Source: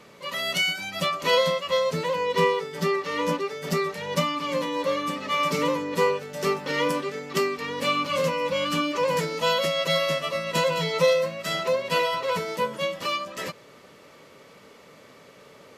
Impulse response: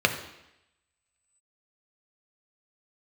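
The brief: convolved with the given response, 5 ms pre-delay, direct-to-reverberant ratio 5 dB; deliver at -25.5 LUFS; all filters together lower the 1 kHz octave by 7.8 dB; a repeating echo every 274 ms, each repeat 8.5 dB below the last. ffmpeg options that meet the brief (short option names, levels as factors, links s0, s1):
-filter_complex "[0:a]equalizer=f=1000:t=o:g=-9,aecho=1:1:274|548|822|1096:0.376|0.143|0.0543|0.0206,asplit=2[s0][s1];[1:a]atrim=start_sample=2205,adelay=5[s2];[s1][s2]afir=irnorm=-1:irlink=0,volume=0.0944[s3];[s0][s3]amix=inputs=2:normalize=0,volume=1.06"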